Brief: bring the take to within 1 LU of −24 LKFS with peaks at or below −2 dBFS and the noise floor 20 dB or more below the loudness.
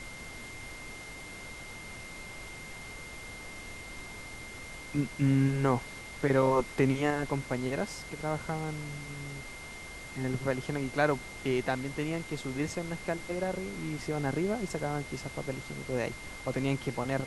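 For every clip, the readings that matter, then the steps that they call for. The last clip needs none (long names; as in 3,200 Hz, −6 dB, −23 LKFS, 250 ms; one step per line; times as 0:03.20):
interfering tone 2,100 Hz; level of the tone −45 dBFS; background noise floor −45 dBFS; target noise floor −54 dBFS; integrated loudness −33.5 LKFS; sample peak −13.0 dBFS; target loudness −24.0 LKFS
→ notch filter 2,100 Hz, Q 30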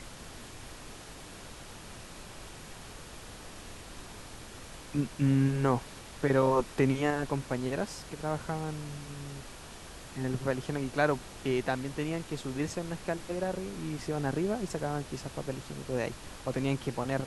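interfering tone none found; background noise floor −47 dBFS; target noise floor −53 dBFS
→ noise reduction from a noise print 6 dB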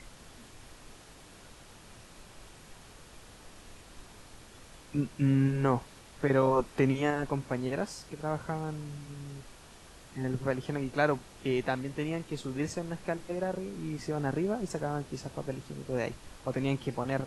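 background noise floor −53 dBFS; integrated loudness −32.5 LKFS; sample peak −13.5 dBFS; target loudness −24.0 LKFS
→ level +8.5 dB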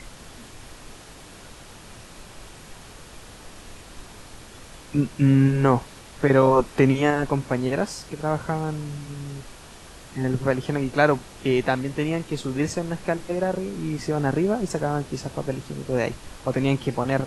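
integrated loudness −24.0 LKFS; sample peak −5.0 dBFS; background noise floor −45 dBFS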